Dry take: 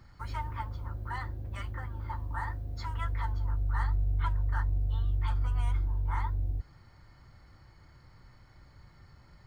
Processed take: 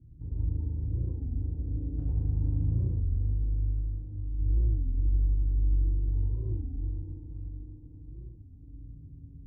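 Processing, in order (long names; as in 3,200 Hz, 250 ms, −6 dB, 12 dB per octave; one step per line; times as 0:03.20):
inverse Chebyshev low-pass filter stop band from 1,100 Hz, stop band 60 dB
brickwall limiter −28.5 dBFS, peak gain reduction 7 dB
0:01.95–0:04.39: compressor whose output falls as the input rises −37 dBFS, ratio −0.5
harmonic generator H 7 −29 dB, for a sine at −26 dBFS
feedback delay with all-pass diffusion 575 ms, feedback 59%, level −12.5 dB
feedback delay network reverb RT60 3.2 s, high-frequency decay 0.85×, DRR −7.5 dB
wow of a warped record 33 1/3 rpm, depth 250 cents
level +1 dB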